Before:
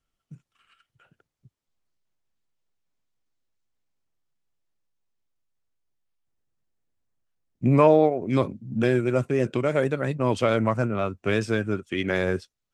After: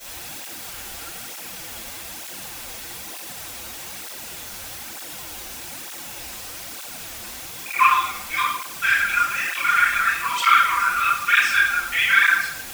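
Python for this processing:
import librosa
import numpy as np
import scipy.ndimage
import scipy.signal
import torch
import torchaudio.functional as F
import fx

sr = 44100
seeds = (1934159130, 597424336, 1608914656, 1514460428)

y = scipy.signal.sosfilt(scipy.signal.butter(12, 1100.0, 'highpass', fs=sr, output='sos'), x)
y = fx.high_shelf(y, sr, hz=3300.0, db=-5.5)
y = y + 0.84 * np.pad(y, (int(5.0 * sr / 1000.0), 0))[:len(y)]
y = fx.dmg_noise_colour(y, sr, seeds[0], colour='white', level_db=-48.0)
y = fx.room_shoebox(y, sr, seeds[1], volume_m3=190.0, walls='mixed', distance_m=6.2)
y = fx.flanger_cancel(y, sr, hz=1.1, depth_ms=7.4)
y = F.gain(torch.from_numpy(y), 1.5).numpy()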